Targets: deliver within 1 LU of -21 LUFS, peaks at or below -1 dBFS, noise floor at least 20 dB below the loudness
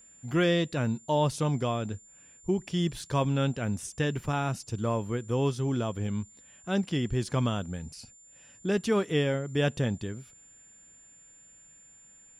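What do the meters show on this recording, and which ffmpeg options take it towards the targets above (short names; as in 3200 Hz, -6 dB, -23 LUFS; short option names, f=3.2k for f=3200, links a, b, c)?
steady tone 7200 Hz; tone level -53 dBFS; loudness -29.5 LUFS; peak -14.5 dBFS; loudness target -21.0 LUFS
-> -af "bandreject=f=7.2k:w=30"
-af "volume=8.5dB"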